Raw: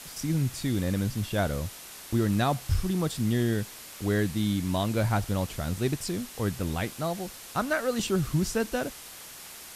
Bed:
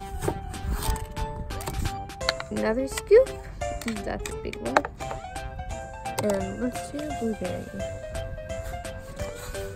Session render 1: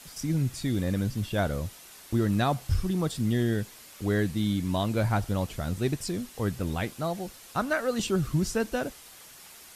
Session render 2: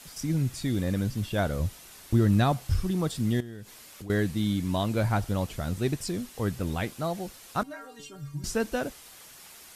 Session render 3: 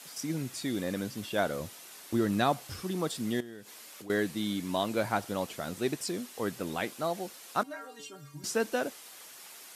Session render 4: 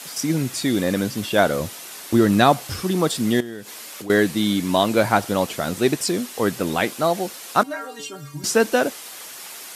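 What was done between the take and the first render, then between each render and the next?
broadband denoise 6 dB, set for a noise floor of −45 dBFS
0:01.59–0:02.52: low-shelf EQ 150 Hz +8.5 dB; 0:03.40–0:04.10: downward compressor 5 to 1, threshold −38 dBFS; 0:07.63–0:08.44: stiff-string resonator 140 Hz, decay 0.38 s, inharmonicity 0.008
high-pass filter 270 Hz 12 dB per octave
level +12 dB

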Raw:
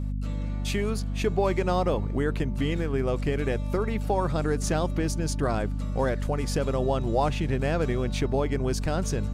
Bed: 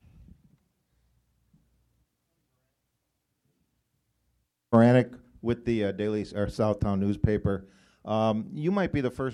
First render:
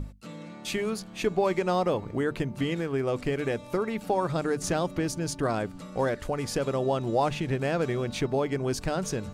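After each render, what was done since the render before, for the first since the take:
mains-hum notches 50/100/150/200/250 Hz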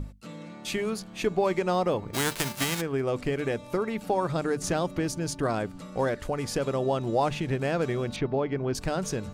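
0:02.13–0:02.80: spectral envelope flattened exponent 0.3
0:08.16–0:08.75: high-frequency loss of the air 220 metres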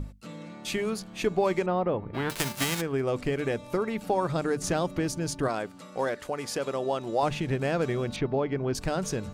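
0:01.66–0:02.30: high-frequency loss of the air 460 metres
0:05.48–0:07.23: high-pass filter 380 Hz 6 dB per octave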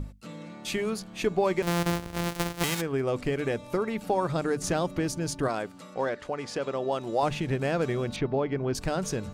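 0:01.62–0:02.64: samples sorted by size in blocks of 256 samples
0:05.94–0:06.92: high-frequency loss of the air 78 metres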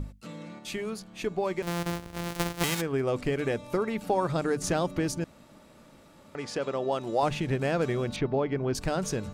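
0:00.59–0:02.30: clip gain −4.5 dB
0:05.24–0:06.35: fill with room tone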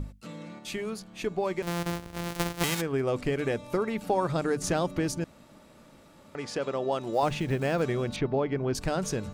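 0:07.13–0:07.84: one scale factor per block 7 bits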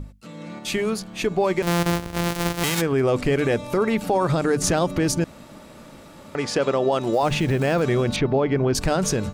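brickwall limiter −22 dBFS, peak gain reduction 10.5 dB
automatic gain control gain up to 10.5 dB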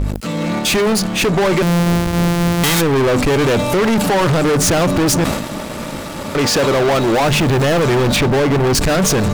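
leveller curve on the samples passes 5
level that may fall only so fast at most 52 dB per second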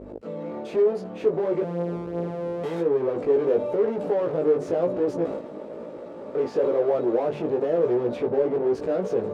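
chorus effect 1 Hz, delay 16.5 ms, depth 3 ms
resonant band-pass 460 Hz, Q 3.1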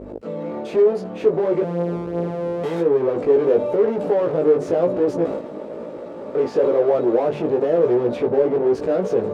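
level +5 dB

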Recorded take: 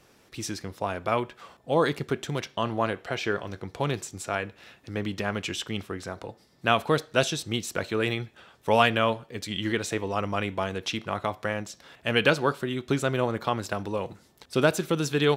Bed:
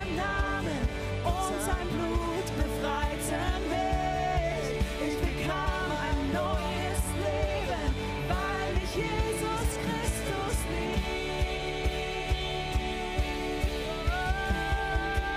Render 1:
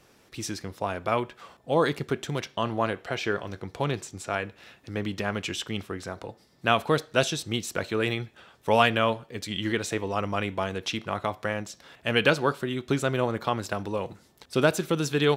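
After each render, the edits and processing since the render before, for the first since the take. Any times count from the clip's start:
0:03.84–0:04.30: high-shelf EQ 8,500 Hz −7 dB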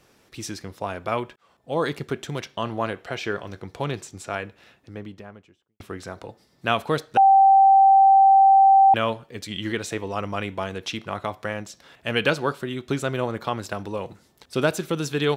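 0:01.36–0:02.04: fade in equal-power
0:04.26–0:05.80: fade out and dull
0:07.17–0:08.94: beep over 779 Hz −10.5 dBFS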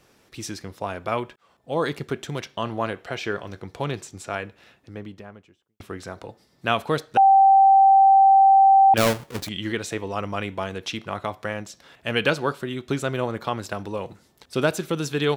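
0:08.97–0:09.49: each half-wave held at its own peak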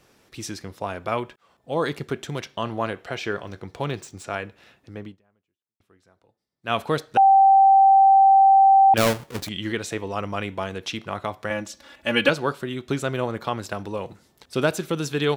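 0:03.44–0:04.24: running median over 3 samples
0:05.07–0:06.75: duck −24 dB, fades 0.12 s
0:11.50–0:12.29: comb filter 3.5 ms, depth 100%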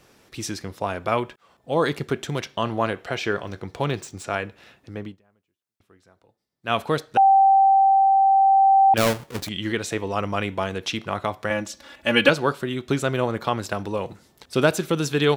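speech leveller within 3 dB 2 s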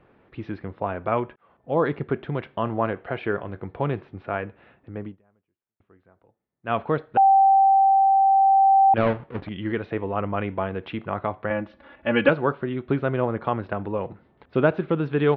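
Gaussian smoothing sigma 3.8 samples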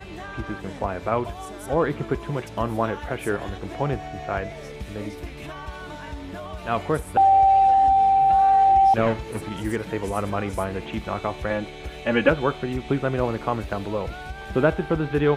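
mix in bed −6 dB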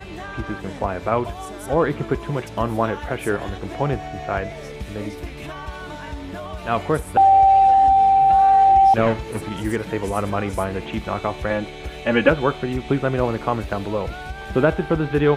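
level +3 dB
brickwall limiter −3 dBFS, peak gain reduction 2 dB

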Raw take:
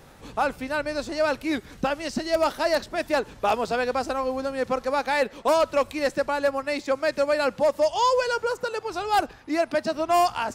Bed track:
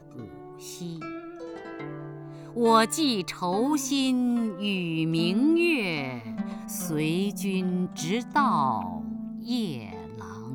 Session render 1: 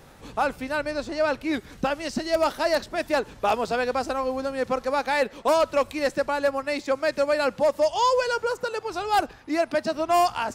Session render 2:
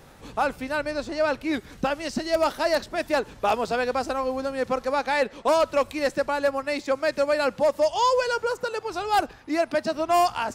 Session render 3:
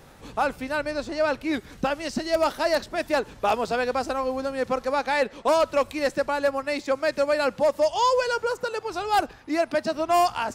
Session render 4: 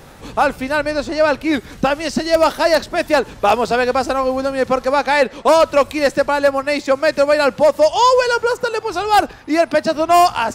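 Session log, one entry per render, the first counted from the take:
0:00.91–0:01.54: high-shelf EQ 6,500 Hz −8 dB
0:04.92–0:05.53: Bessel low-pass filter 10,000 Hz
no processing that can be heard
level +9 dB

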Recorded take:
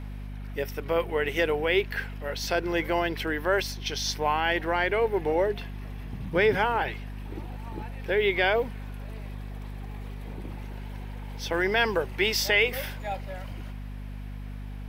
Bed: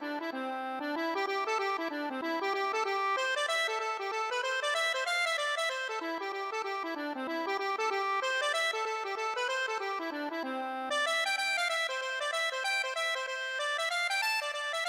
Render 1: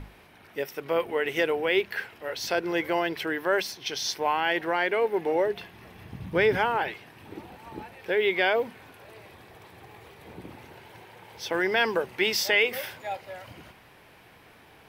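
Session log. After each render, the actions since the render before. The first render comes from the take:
mains-hum notches 50/100/150/200/250 Hz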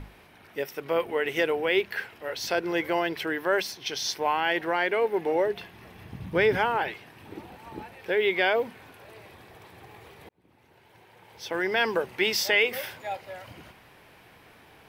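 0:10.29–0:11.96: fade in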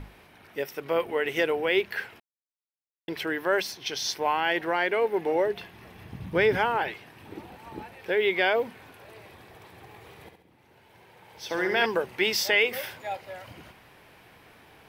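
0:02.20–0:03.08: silence
0:10.01–0:11.86: flutter between parallel walls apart 11.7 metres, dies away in 0.6 s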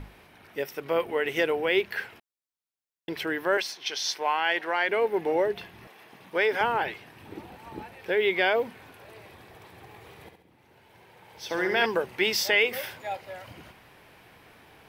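0:03.57–0:04.89: meter weighting curve A
0:05.87–0:06.61: high-pass filter 450 Hz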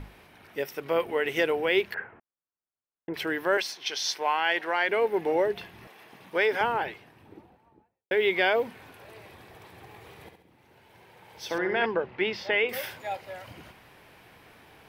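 0:01.94–0:03.14: low-pass filter 1,700 Hz 24 dB per octave
0:06.41–0:08.11: fade out and dull
0:11.58–0:12.69: high-frequency loss of the air 330 metres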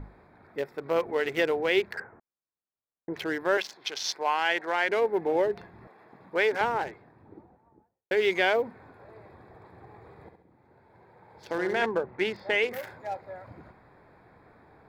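adaptive Wiener filter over 15 samples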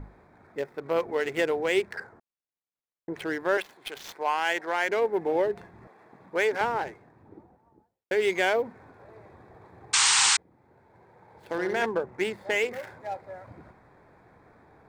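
running median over 9 samples
0:09.93–0:10.37: sound drawn into the spectrogram noise 770–9,100 Hz −21 dBFS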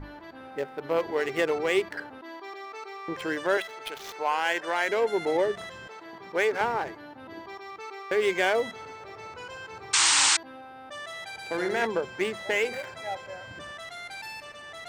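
mix in bed −9 dB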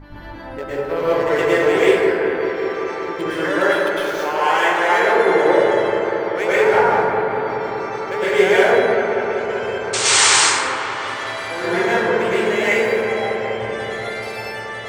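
delay with a low-pass on its return 192 ms, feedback 82%, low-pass 2,000 Hz, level −7 dB
dense smooth reverb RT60 1.5 s, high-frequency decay 0.45×, pre-delay 95 ms, DRR −9.5 dB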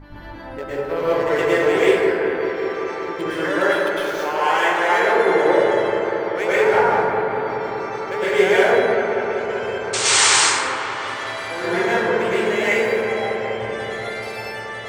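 level −1.5 dB

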